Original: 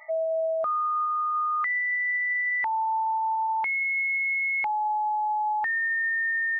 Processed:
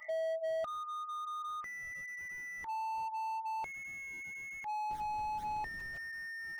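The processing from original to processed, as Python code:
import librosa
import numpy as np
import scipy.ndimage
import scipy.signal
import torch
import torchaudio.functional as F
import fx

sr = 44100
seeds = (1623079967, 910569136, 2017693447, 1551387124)

y = fx.dmg_noise_colour(x, sr, seeds[0], colour='pink', level_db=-51.0, at=(4.89, 5.97), fade=0.02)
y = fx.phaser_stages(y, sr, stages=12, low_hz=320.0, high_hz=1600.0, hz=1.3, feedback_pct=20)
y = fx.slew_limit(y, sr, full_power_hz=12.0)
y = y * librosa.db_to_amplitude(1.0)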